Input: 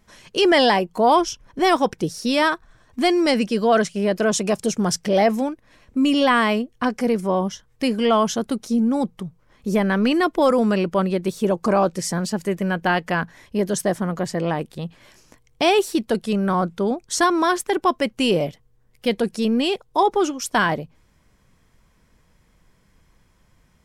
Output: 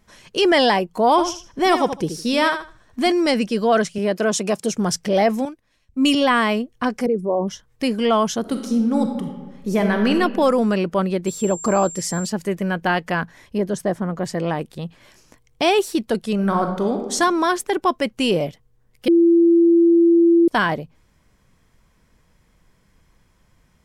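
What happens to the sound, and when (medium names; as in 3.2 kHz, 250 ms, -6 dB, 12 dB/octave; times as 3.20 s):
1.10–3.12 s: feedback delay 78 ms, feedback 21%, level -9 dB
3.98–4.74 s: high-pass 150 Hz
5.45–6.15 s: three bands expanded up and down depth 100%
7.06–7.48 s: resonances exaggerated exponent 2
8.40–10.10 s: reverb throw, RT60 1.3 s, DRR 4 dB
11.26–12.27 s: whistle 7.4 kHz -32 dBFS
13.58–14.23 s: treble shelf 2.4 kHz -9.5 dB
16.34–17.13 s: reverb throw, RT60 1 s, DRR 4.5 dB
19.08–20.48 s: bleep 338 Hz -10 dBFS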